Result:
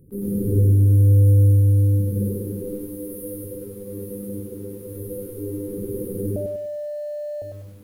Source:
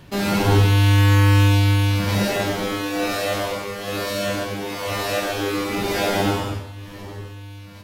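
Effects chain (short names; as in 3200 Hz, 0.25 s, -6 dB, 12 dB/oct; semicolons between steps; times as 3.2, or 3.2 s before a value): 2.79–3.44 tilt shelf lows -4.5 dB, about 1200 Hz; echo with dull and thin repeats by turns 0.108 s, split 1100 Hz, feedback 75%, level -7 dB; FFT band-reject 540–9100 Hz; 0.56–1.47 bell 2000 Hz -4.5 dB -> +3 dB 1.3 oct; 6.36–7.42 bleep 593 Hz -20 dBFS; lo-fi delay 0.1 s, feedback 35%, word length 8-bit, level -5 dB; gain -5 dB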